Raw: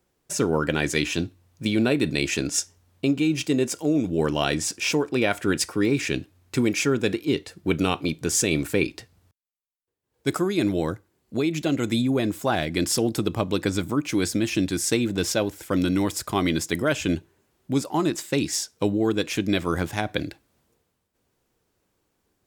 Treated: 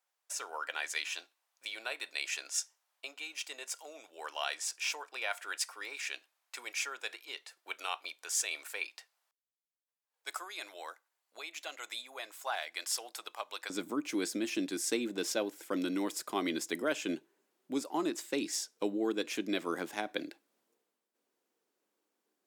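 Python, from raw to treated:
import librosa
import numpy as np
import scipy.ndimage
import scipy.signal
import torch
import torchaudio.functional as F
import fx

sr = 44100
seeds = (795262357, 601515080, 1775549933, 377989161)

y = fx.highpass(x, sr, hz=fx.steps((0.0, 730.0), (13.7, 250.0)), slope=24)
y = y * 10.0 ** (-9.0 / 20.0)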